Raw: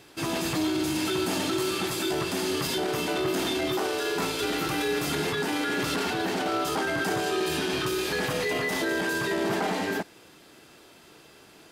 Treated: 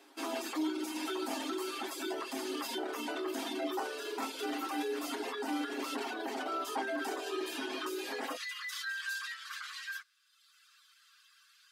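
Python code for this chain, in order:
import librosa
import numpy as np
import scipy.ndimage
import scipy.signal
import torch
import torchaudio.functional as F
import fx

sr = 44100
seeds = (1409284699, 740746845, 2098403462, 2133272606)

y = fx.dereverb_blind(x, sr, rt60_s=1.2)
y = fx.cheby_ripple_highpass(y, sr, hz=fx.steps((0.0, 220.0), (8.35, 1100.0)), ripple_db=6)
y = y + 0.57 * np.pad(y, (int(7.4 * sr / 1000.0), 0))[:len(y)]
y = y * librosa.db_to_amplitude(-4.0)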